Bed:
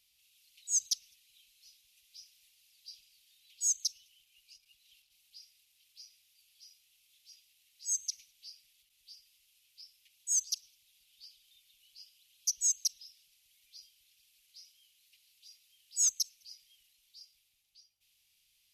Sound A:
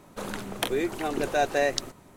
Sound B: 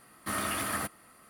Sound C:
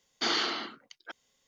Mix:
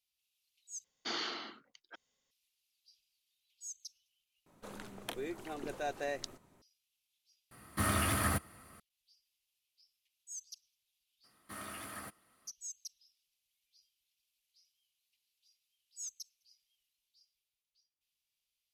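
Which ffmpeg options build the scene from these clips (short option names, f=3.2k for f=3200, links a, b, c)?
-filter_complex "[2:a]asplit=2[a][b];[0:a]volume=-16dB[c];[a]equalizer=f=79:t=o:w=1.8:g=13.5[d];[c]asplit=4[e][f][g][h];[e]atrim=end=0.844[i];[3:a]atrim=end=1.47,asetpts=PTS-STARTPTS,volume=-9.5dB[j];[f]atrim=start=2.306:end=4.464[k];[1:a]atrim=end=2.16,asetpts=PTS-STARTPTS,volume=-13.5dB[l];[g]atrim=start=6.616:end=7.514[m];[d]atrim=end=1.29,asetpts=PTS-STARTPTS,volume=-1dB[n];[h]atrim=start=8.796[o];[b]atrim=end=1.29,asetpts=PTS-STARTPTS,volume=-13.5dB,afade=t=in:d=0.02,afade=t=out:st=1.27:d=0.02,adelay=11230[p];[i][j]acrossfade=d=0.004:c1=hsin:c2=hsin[q];[q][k]acrossfade=d=0.004:c1=hsin:c2=hsin[r];[r][l]acrossfade=d=0.004:c1=hsin:c2=hsin[s];[s][m]acrossfade=d=0.004:c1=hsin:c2=hsin[t];[t][n]acrossfade=d=0.004:c1=hsin:c2=hsin[u];[u][o]acrossfade=d=0.004:c1=hsin:c2=hsin[v];[v][p]amix=inputs=2:normalize=0"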